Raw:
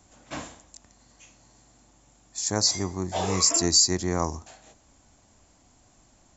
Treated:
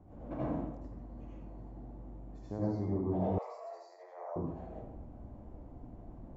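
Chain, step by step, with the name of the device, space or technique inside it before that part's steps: television next door (compression 5:1, threshold -39 dBFS, peak gain reduction 21 dB; low-pass 570 Hz 12 dB/octave; reverberation RT60 0.80 s, pre-delay 73 ms, DRR -7 dB); 3.38–4.36 s: steep high-pass 560 Hz 48 dB/octave; trim +3.5 dB

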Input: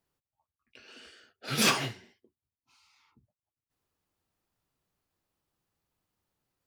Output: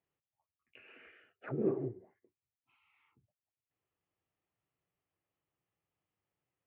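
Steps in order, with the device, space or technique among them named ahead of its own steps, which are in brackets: envelope filter bass rig (touch-sensitive low-pass 370–3200 Hz down, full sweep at -32 dBFS; cabinet simulation 68–2100 Hz, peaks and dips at 70 Hz -6 dB, 230 Hz -8 dB, 940 Hz -4 dB, 1.5 kHz -6 dB); trim -4.5 dB

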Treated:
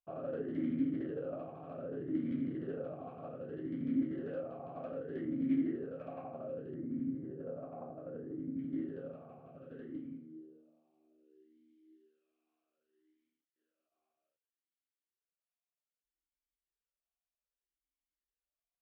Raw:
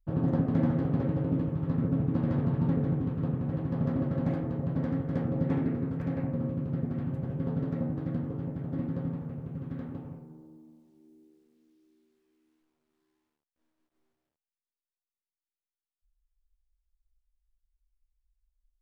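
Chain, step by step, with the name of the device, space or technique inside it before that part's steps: 6.74–8.59 s: Bessel low-pass 1.1 kHz, order 2; talk box (valve stage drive 29 dB, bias 0.4; talking filter a-i 0.64 Hz); trim +8 dB

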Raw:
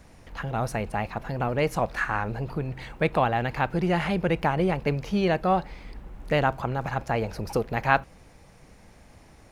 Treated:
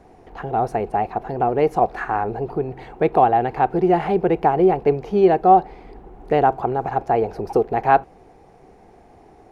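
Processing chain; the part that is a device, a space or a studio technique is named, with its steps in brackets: inside a helmet (treble shelf 3.4 kHz -7 dB; small resonant body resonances 400/730 Hz, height 17 dB, ringing for 25 ms); trim -3 dB

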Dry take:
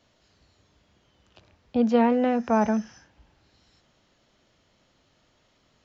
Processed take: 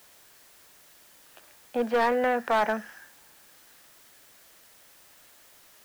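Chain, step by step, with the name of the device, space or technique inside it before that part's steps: drive-through speaker (band-pass 470–2900 Hz; peaking EQ 1.7 kHz +8 dB 0.49 oct; hard clipper -21.5 dBFS, distortion -12 dB; white noise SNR 24 dB); trim +2.5 dB

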